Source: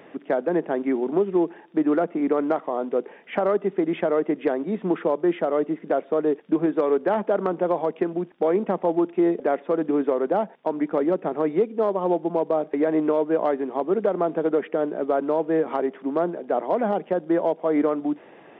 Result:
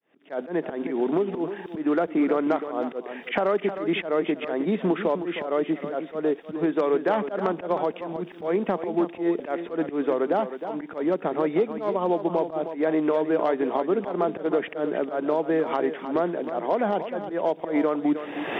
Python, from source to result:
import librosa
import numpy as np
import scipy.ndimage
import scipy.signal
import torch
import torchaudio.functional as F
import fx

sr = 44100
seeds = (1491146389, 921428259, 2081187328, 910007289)

y = fx.fade_in_head(x, sr, length_s=1.41)
y = fx.recorder_agc(y, sr, target_db=-14.0, rise_db_per_s=38.0, max_gain_db=30)
y = fx.high_shelf(y, sr, hz=2100.0, db=10.5)
y = fx.auto_swell(y, sr, attack_ms=112.0)
y = y + 10.0 ** (-10.0 / 20.0) * np.pad(y, (int(312 * sr / 1000.0), 0))[:len(y)]
y = y * 10.0 ** (-2.5 / 20.0)